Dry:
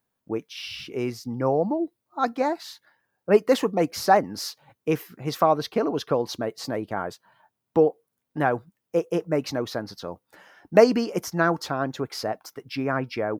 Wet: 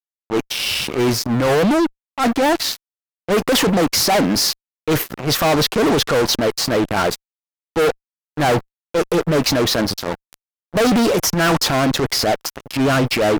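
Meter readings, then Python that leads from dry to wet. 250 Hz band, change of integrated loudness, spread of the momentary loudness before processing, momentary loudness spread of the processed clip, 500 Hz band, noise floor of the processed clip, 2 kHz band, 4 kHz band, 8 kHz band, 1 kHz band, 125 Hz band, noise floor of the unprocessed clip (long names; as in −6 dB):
+9.0 dB, +7.5 dB, 14 LU, 9 LU, +5.0 dB, below −85 dBFS, +10.0 dB, +16.0 dB, +17.0 dB, +5.5 dB, +10.0 dB, −81 dBFS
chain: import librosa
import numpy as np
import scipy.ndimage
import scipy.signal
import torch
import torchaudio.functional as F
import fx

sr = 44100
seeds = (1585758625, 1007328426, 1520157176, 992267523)

y = fx.transient(x, sr, attack_db=-11, sustain_db=4)
y = fx.fuzz(y, sr, gain_db=35.0, gate_db=-40.0)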